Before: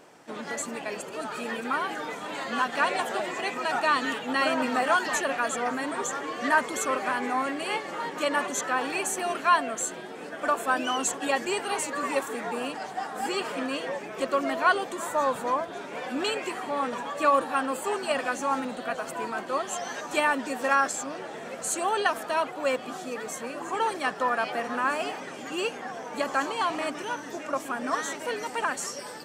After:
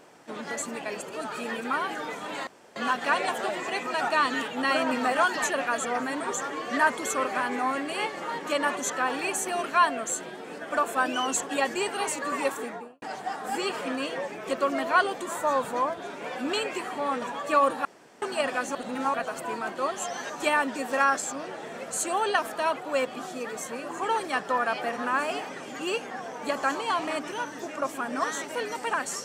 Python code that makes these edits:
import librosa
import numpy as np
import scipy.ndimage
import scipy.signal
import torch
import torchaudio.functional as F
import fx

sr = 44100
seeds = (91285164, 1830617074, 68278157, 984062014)

y = fx.studio_fade_out(x, sr, start_s=12.27, length_s=0.46)
y = fx.edit(y, sr, fx.insert_room_tone(at_s=2.47, length_s=0.29),
    fx.room_tone_fill(start_s=17.56, length_s=0.37),
    fx.reverse_span(start_s=18.46, length_s=0.39), tone=tone)